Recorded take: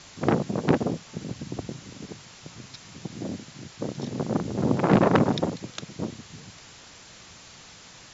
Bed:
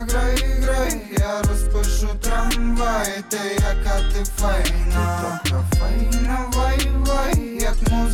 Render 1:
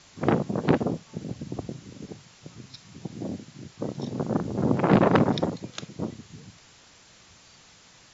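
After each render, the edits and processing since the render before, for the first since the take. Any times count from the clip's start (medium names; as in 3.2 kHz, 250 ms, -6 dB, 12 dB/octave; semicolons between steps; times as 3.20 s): noise print and reduce 6 dB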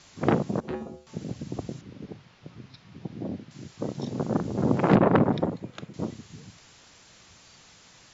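0.60–1.07 s: feedback comb 74 Hz, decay 0.43 s, harmonics odd, mix 90%; 1.81–3.51 s: distance through air 210 m; 4.95–5.94 s: peaking EQ 6 kHz -14.5 dB 1.7 oct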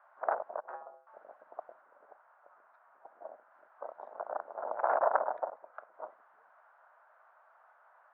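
dynamic bell 1.2 kHz, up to -4 dB, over -41 dBFS, Q 2.2; Chebyshev band-pass 620–1500 Hz, order 3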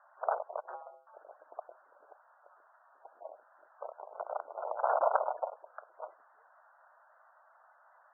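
dynamic bell 1.6 kHz, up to -3 dB, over -54 dBFS, Q 7; spectral gate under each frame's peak -20 dB strong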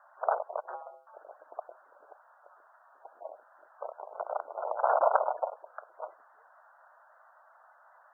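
trim +3.5 dB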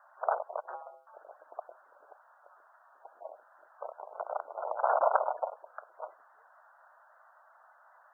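bass shelf 450 Hz -5.5 dB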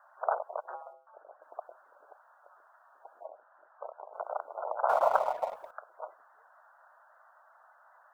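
0.93–1.42 s: distance through air 430 m; 3.26–4.14 s: distance through air 310 m; 4.89–5.71 s: companding laws mixed up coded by mu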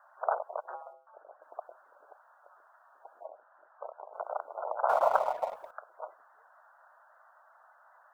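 no audible change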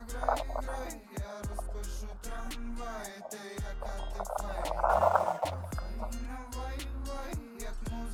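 add bed -19.5 dB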